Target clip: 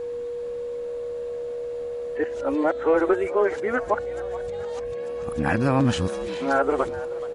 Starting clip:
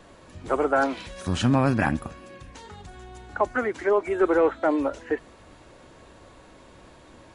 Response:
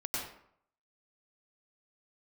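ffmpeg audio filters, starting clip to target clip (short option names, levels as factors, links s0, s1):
-filter_complex "[0:a]areverse,aeval=exprs='val(0)+0.0398*sin(2*PI*480*n/s)':c=same,asplit=6[s0][s1][s2][s3][s4][s5];[s1]adelay=427,afreqshift=74,volume=0.133[s6];[s2]adelay=854,afreqshift=148,volume=0.0708[s7];[s3]adelay=1281,afreqshift=222,volume=0.0376[s8];[s4]adelay=1708,afreqshift=296,volume=0.02[s9];[s5]adelay=2135,afreqshift=370,volume=0.0105[s10];[s0][s6][s7][s8][s9][s10]amix=inputs=6:normalize=0"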